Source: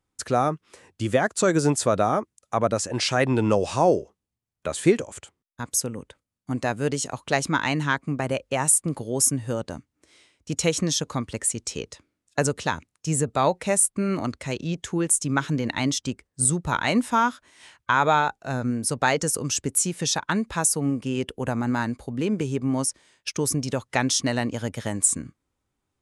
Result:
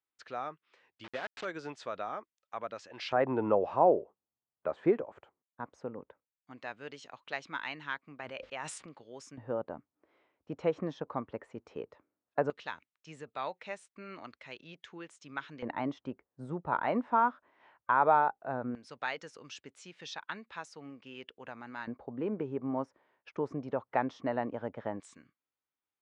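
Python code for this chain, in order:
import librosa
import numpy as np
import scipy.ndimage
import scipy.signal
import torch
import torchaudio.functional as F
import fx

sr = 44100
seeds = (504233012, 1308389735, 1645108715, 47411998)

y = fx.delta_hold(x, sr, step_db=-21.5, at=(1.04, 1.45))
y = fx.filter_lfo_bandpass(y, sr, shape='square', hz=0.16, low_hz=840.0, high_hz=3600.0, q=0.95)
y = fx.spacing_loss(y, sr, db_at_10k=38)
y = fx.sustainer(y, sr, db_per_s=45.0, at=(8.2, 8.86))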